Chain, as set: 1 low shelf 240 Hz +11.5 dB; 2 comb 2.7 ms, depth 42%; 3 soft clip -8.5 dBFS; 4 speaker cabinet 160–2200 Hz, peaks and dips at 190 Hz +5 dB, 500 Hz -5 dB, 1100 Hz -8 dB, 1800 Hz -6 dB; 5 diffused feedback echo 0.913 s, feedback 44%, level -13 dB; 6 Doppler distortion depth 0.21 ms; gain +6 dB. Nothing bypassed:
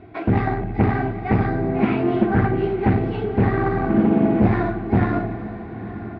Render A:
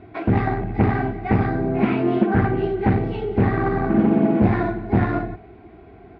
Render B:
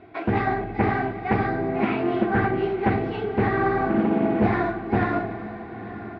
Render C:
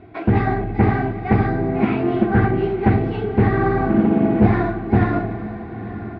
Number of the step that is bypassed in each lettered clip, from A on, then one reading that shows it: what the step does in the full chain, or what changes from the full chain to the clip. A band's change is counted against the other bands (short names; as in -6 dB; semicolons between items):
5, momentary loudness spread change -2 LU; 1, 125 Hz band -7.0 dB; 3, distortion -17 dB